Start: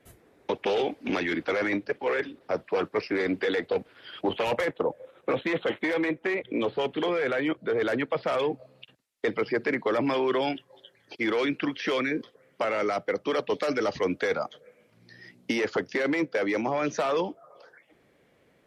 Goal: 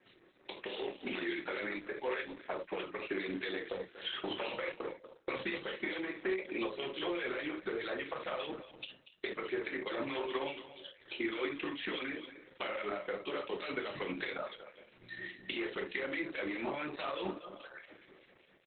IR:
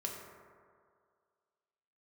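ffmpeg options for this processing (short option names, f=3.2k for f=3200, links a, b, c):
-filter_complex "[0:a]asplit=3[a][b][c];[a]afade=t=out:st=9.3:d=0.02[d];[b]aeval=exprs='if(lt(val(0),0),0.708*val(0),val(0))':c=same,afade=t=in:st=9.3:d=0.02,afade=t=out:st=9.7:d=0.02[e];[c]afade=t=in:st=9.7:d=0.02[f];[d][e][f]amix=inputs=3:normalize=0,highpass=280,equalizer=f=580:w=0.4:g=-11,acrossover=split=2000[g][h];[g]aeval=exprs='val(0)*(1-0.7/2+0.7/2*cos(2*PI*4.8*n/s))':c=same[i];[h]aeval=exprs='val(0)*(1-0.7/2-0.7/2*cos(2*PI*4.8*n/s))':c=same[j];[i][j]amix=inputs=2:normalize=0,acompressor=threshold=-50dB:ratio=10,asplit=3[k][l][m];[k]afade=t=out:st=0.64:d=0.02[n];[l]lowpass=f=4.7k:w=0.5412,lowpass=f=4.7k:w=1.3066,afade=t=in:st=0.64:d=0.02,afade=t=out:st=1.16:d=0.02[o];[m]afade=t=in:st=1.16:d=0.02[p];[n][o][p]amix=inputs=3:normalize=0,asplit=3[q][r][s];[q]afade=t=out:st=4.1:d=0.02[t];[r]agate=range=-18dB:threshold=-59dB:ratio=16:detection=peak,afade=t=in:st=4.1:d=0.02,afade=t=out:st=5.36:d=0.02[u];[s]afade=t=in:st=5.36:d=0.02[v];[t][u][v]amix=inputs=3:normalize=0,aecho=1:1:239:0.2[w];[1:a]atrim=start_sample=2205,atrim=end_sample=3528,asetrate=41013,aresample=44100[x];[w][x]afir=irnorm=-1:irlink=0,acrusher=bits=3:mode=log:mix=0:aa=0.000001,dynaudnorm=f=130:g=11:m=8.5dB,volume=8.5dB" -ar 48000 -c:a libopus -b:a 8k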